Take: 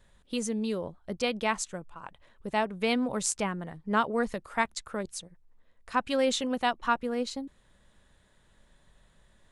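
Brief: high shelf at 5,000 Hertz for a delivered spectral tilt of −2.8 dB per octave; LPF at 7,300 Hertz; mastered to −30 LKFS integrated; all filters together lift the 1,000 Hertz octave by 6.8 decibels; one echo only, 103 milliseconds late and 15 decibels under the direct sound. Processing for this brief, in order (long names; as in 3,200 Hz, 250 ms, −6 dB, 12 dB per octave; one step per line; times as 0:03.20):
low-pass filter 7,300 Hz
parametric band 1,000 Hz +8.5 dB
high-shelf EQ 5,000 Hz −7 dB
single-tap delay 103 ms −15 dB
level −2.5 dB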